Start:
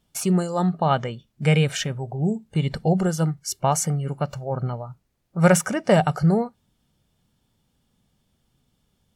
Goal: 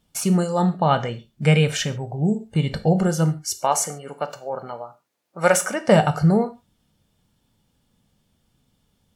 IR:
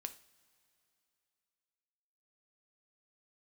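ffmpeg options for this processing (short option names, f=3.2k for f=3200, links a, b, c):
-filter_complex "[0:a]asettb=1/sr,asplit=3[a][b][c];[a]atrim=end=3.554[d];[b]atrim=start=3.55:end=5.88,asetpts=PTS-STARTPTS,afade=t=in:d=0.004:c=qsin,afade=t=out:st=2.326:d=0.004:c=qsin,highpass=390[e];[c]atrim=start=5.876[f];[d][e]acrossfade=d=0.004:c1=hsin:c2=qsin[g];[g][f]acrossfade=d=0.004:c1=qsin:c2=hsin[h];[1:a]atrim=start_sample=2205,afade=t=out:st=0.2:d=0.01,atrim=end_sample=9261[i];[h][i]afir=irnorm=-1:irlink=0,volume=5.5dB"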